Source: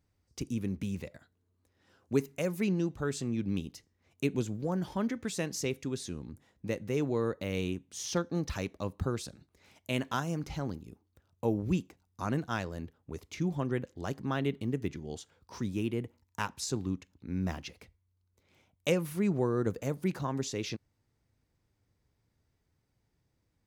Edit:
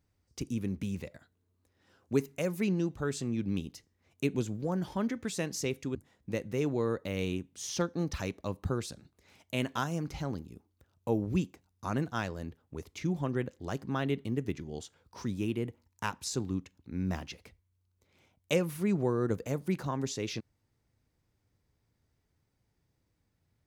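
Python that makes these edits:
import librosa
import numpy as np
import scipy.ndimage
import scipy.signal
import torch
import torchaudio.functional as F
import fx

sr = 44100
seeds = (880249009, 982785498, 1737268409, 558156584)

y = fx.edit(x, sr, fx.cut(start_s=5.95, length_s=0.36), tone=tone)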